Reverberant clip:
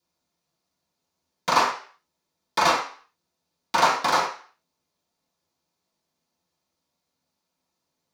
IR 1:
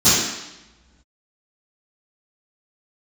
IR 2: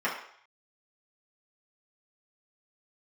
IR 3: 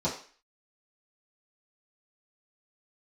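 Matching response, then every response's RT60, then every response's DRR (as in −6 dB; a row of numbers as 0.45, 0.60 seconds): 3; 1.0, 0.60, 0.40 seconds; −20.5, −7.5, −10.0 decibels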